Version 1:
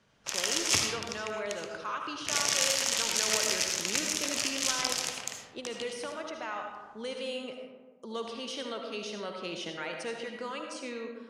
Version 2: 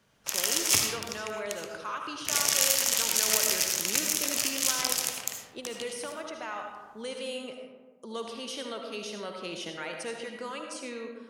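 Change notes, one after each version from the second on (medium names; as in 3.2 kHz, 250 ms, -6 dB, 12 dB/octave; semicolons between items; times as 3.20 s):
master: remove low-pass 6.7 kHz 12 dB/octave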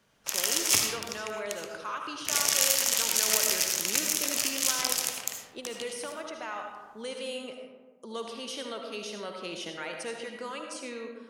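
master: add peaking EQ 99 Hz -3.5 dB 1.7 oct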